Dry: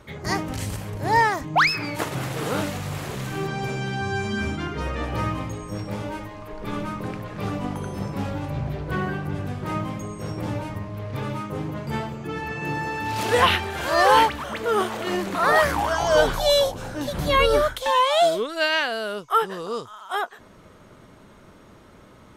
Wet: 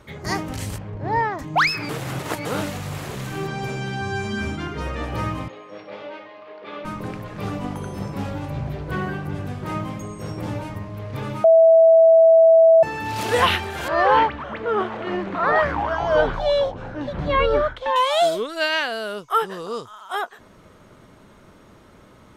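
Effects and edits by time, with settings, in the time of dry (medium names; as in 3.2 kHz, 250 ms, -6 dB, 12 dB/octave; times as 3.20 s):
0.78–1.39 s: tape spacing loss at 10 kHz 32 dB
1.89–2.45 s: reverse
5.48–6.85 s: cabinet simulation 490–4000 Hz, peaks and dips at 570 Hz +3 dB, 930 Hz -6 dB, 1.5 kHz -3 dB
11.44–12.83 s: bleep 654 Hz -8.5 dBFS
13.88–17.96 s: low-pass 2.3 kHz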